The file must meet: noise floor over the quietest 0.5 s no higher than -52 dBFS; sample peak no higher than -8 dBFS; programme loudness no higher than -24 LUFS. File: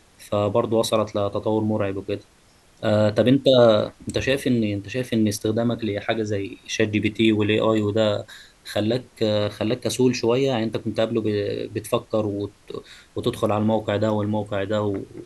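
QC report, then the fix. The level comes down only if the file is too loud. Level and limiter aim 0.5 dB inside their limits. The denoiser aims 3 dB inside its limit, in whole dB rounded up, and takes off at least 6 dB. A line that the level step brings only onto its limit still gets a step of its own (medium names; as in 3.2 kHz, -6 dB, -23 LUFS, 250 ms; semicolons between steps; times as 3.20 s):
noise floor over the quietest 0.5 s -55 dBFS: pass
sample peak -4.0 dBFS: fail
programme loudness -22.5 LUFS: fail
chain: trim -2 dB; peak limiter -8.5 dBFS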